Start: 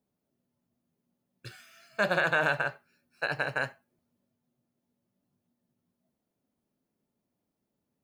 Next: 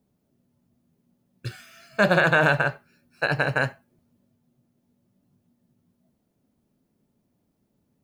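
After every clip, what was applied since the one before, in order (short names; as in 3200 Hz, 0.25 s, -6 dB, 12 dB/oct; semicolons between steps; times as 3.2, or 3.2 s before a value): low shelf 290 Hz +9.5 dB; gain +6 dB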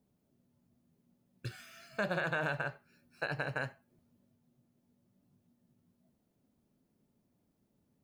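compressor 2:1, threshold -35 dBFS, peak gain reduction 11.5 dB; gain -4.5 dB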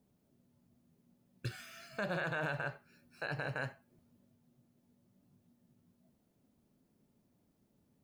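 limiter -29.5 dBFS, peak gain reduction 8.5 dB; gain +2 dB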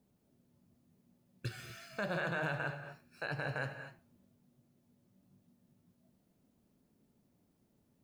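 non-linear reverb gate 0.27 s rising, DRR 8.5 dB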